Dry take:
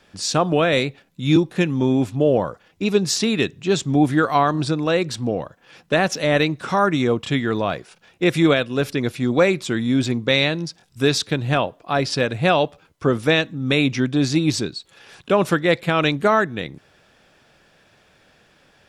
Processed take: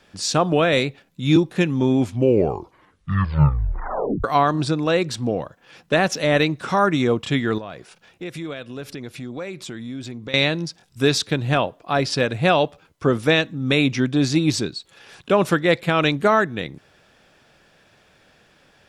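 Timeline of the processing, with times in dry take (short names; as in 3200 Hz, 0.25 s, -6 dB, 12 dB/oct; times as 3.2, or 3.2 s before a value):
1.97 tape stop 2.27 s
7.58–10.34 compressor 3:1, threshold -33 dBFS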